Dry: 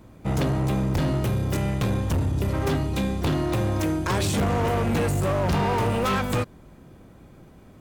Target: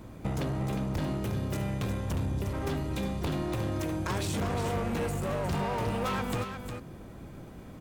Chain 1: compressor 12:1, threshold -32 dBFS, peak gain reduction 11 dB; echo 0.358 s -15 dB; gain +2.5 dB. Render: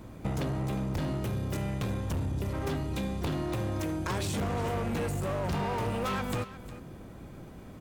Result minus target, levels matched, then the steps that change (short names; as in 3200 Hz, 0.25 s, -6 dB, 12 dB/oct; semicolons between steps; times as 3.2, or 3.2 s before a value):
echo-to-direct -7.5 dB
change: echo 0.358 s -7.5 dB